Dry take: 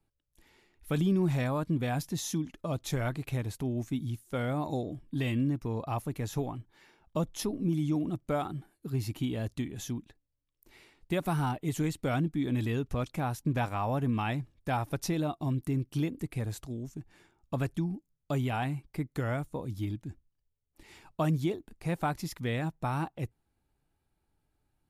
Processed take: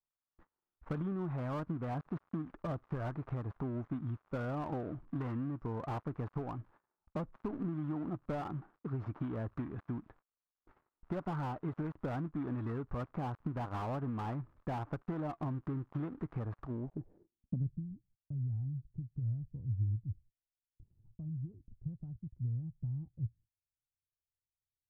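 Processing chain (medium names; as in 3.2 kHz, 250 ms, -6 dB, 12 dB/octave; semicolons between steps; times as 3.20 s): dead-time distortion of 0.2 ms; crackle 180 per s -53 dBFS; compression 10:1, threshold -33 dBFS, peak gain reduction 10.5 dB; gate -60 dBFS, range -28 dB; low-pass sweep 1.2 kHz -> 110 Hz, 16.66–17.84 s; slew-rate limiter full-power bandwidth 13 Hz; trim -1 dB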